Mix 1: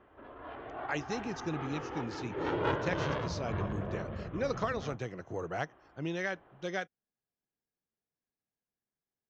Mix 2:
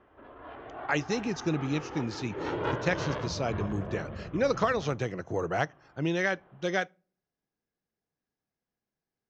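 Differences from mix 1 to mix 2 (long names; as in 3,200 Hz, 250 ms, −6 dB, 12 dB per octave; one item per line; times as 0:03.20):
speech +5.5 dB
reverb: on, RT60 0.40 s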